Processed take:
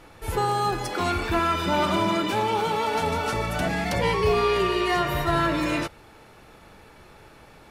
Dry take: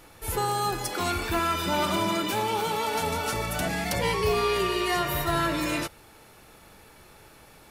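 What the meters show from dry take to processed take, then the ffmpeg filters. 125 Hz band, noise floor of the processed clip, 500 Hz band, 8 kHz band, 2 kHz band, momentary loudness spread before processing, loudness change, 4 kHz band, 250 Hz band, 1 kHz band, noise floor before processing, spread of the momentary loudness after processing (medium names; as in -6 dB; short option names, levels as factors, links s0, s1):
+3.5 dB, -50 dBFS, +3.5 dB, -5.0 dB, +2.0 dB, 4 LU, +2.5 dB, 0.0 dB, +3.5 dB, +3.0 dB, -53 dBFS, 5 LU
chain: -af "aemphasis=mode=reproduction:type=50kf,volume=1.5"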